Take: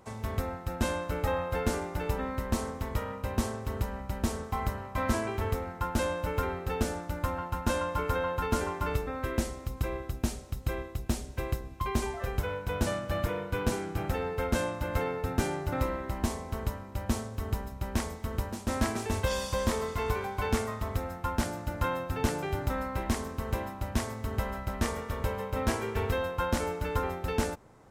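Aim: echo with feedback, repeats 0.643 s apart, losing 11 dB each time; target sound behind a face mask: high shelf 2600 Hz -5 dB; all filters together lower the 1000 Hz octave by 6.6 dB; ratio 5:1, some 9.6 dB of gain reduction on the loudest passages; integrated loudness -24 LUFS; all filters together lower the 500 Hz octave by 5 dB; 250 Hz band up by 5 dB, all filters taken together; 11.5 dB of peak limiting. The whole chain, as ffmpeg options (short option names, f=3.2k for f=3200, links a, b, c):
-af "equalizer=f=250:t=o:g=7.5,equalizer=f=500:t=o:g=-6.5,equalizer=f=1k:t=o:g=-6,acompressor=threshold=-31dB:ratio=5,alimiter=level_in=7dB:limit=-24dB:level=0:latency=1,volume=-7dB,highshelf=f=2.6k:g=-5,aecho=1:1:643|1286|1929:0.282|0.0789|0.0221,volume=16.5dB"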